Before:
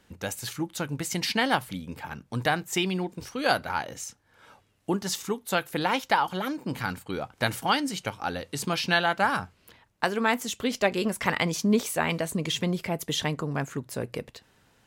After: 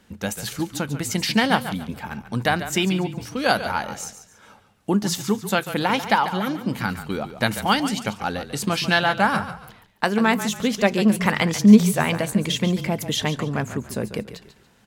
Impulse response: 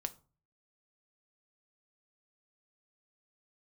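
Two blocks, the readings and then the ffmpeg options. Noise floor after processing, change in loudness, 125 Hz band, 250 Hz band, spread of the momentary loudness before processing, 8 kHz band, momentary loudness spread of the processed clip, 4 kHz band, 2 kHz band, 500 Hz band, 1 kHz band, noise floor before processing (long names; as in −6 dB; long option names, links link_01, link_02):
−56 dBFS, +6.0 dB, +7.5 dB, +9.5 dB, 11 LU, +4.5 dB, 11 LU, +4.5 dB, +4.5 dB, +4.5 dB, +4.5 dB, −65 dBFS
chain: -filter_complex "[0:a]equalizer=frequency=210:width_type=o:width=0.21:gain=10.5,asplit=2[link_01][link_02];[link_02]asplit=3[link_03][link_04][link_05];[link_03]adelay=142,afreqshift=-32,volume=-11.5dB[link_06];[link_04]adelay=284,afreqshift=-64,volume=-21.7dB[link_07];[link_05]adelay=426,afreqshift=-96,volume=-31.8dB[link_08];[link_06][link_07][link_08]amix=inputs=3:normalize=0[link_09];[link_01][link_09]amix=inputs=2:normalize=0,volume=4dB"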